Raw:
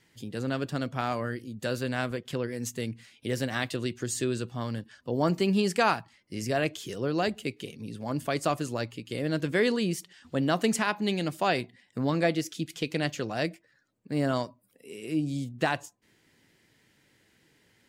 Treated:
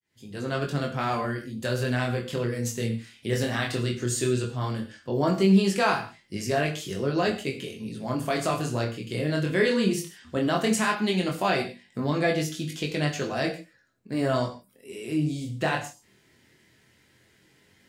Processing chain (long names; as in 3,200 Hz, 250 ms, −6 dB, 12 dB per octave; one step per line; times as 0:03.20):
fade in at the beginning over 0.53 s
chorus effect 0.16 Hz, delay 20 ms, depth 6.4 ms
in parallel at +2.5 dB: brickwall limiter −22 dBFS, peak gain reduction 8.5 dB
on the sum: reverb whose tail is shaped and stops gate 180 ms falling, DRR 4 dB
level −2 dB